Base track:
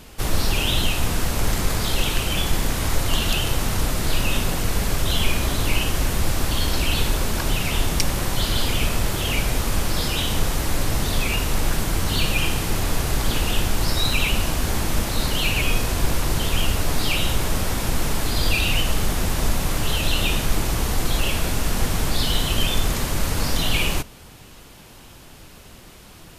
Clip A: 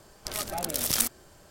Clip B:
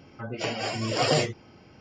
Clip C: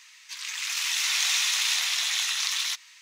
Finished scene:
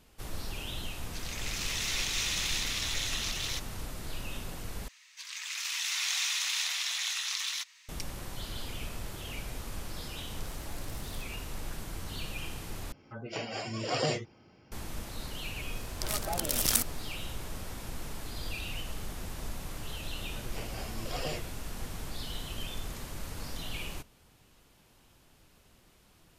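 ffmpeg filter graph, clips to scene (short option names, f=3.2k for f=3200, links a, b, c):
-filter_complex "[3:a]asplit=2[a][b];[1:a]asplit=2[c][d];[2:a]asplit=2[e][f];[0:a]volume=-17.5dB[g];[a]alimiter=limit=-12.5dB:level=0:latency=1:release=152[h];[c]acompressor=threshold=-42dB:ratio=6:attack=3.2:release=140:knee=1:detection=peak[i];[g]asplit=3[j][k][l];[j]atrim=end=4.884[m];[b]atrim=end=3.01,asetpts=PTS-STARTPTS,volume=-6.5dB[n];[k]atrim=start=7.886:end=12.924[o];[e]atrim=end=1.8,asetpts=PTS-STARTPTS,volume=-7dB[p];[l]atrim=start=14.716[q];[h]atrim=end=3.01,asetpts=PTS-STARTPTS,volume=-7.5dB,afade=t=in:d=0.004:c=hsin,afade=t=out:st=3.006:d=0.004:c=hsin,adelay=840[r];[i]atrim=end=1.5,asetpts=PTS-STARTPTS,volume=-8dB,afade=t=in:d=0.004:c=hsin,afade=t=out:st=1.496:d=0.004:c=hsin,adelay=10140[s];[d]atrim=end=1.5,asetpts=PTS-STARTPTS,volume=-1.5dB,afade=t=in:d=0.004:c=hsin,afade=t=out:st=1.496:d=0.004:c=hsin,adelay=15750[t];[f]atrim=end=1.8,asetpts=PTS-STARTPTS,volume=-14dB,afade=t=in:d=0.004:c=hsin,afade=t=out:st=1.796:d=0.004:c=hsin,adelay=20140[u];[m][n]acrossfade=d=0.004:c1=hsin:c2=hsin[v];[v][o]acrossfade=d=0.004:c1=hsin:c2=hsin[w];[w][p]acrossfade=d=0.004:c1=hsin:c2=hsin[x];[x][q]acrossfade=d=0.004:c1=hsin:c2=hsin[y];[y][r][s][t][u]amix=inputs=5:normalize=0"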